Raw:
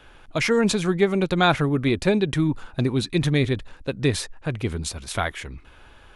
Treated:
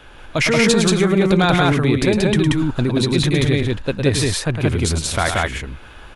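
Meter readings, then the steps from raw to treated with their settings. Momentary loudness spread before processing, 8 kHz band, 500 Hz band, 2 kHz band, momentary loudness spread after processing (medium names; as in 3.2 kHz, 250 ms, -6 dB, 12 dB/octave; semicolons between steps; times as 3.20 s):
10 LU, +9.5 dB, +5.0 dB, +6.5 dB, 6 LU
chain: in parallel at -0.5 dB: compressor with a negative ratio -23 dBFS, ratio -0.5; on the sum: short-mantissa float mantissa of 8-bit; loudspeakers at several distances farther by 37 m -7 dB, 62 m -1 dB; trim -1 dB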